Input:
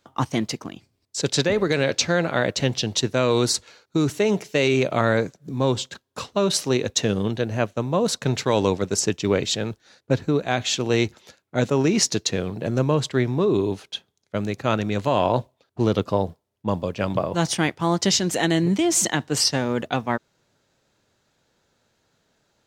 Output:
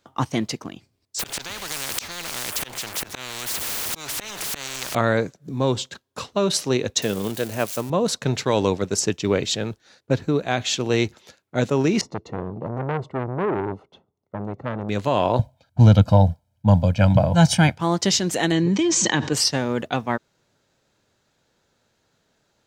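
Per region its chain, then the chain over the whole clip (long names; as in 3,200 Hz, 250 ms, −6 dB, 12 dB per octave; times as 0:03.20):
0:01.19–0:04.95: converter with a step at zero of −33 dBFS + volume swells 705 ms + every bin compressed towards the loudest bin 10 to 1
0:07.02–0:07.90: spike at every zero crossing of −23 dBFS + low-shelf EQ 120 Hz −12 dB
0:12.01–0:14.89: Savitzky-Golay smoothing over 65 samples + saturating transformer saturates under 1,100 Hz
0:15.39–0:17.78: parametric band 80 Hz +11 dB 2.6 octaves + comb filter 1.3 ms, depth 91%
0:18.52–0:19.33: Butterworth low-pass 7,200 Hz + notch comb filter 690 Hz + envelope flattener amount 70%
whole clip: no processing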